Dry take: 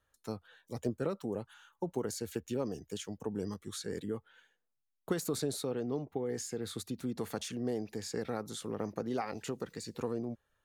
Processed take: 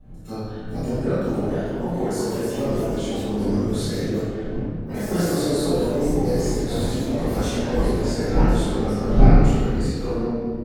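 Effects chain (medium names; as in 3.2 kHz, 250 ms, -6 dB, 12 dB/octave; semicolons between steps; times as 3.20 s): wind noise 160 Hz -40 dBFS; doubling 30 ms -2 dB; reverberation RT60 2.0 s, pre-delay 3 ms, DRR -17 dB; ever faster or slower copies 636 ms, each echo +3 st, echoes 3, each echo -6 dB; trim -10 dB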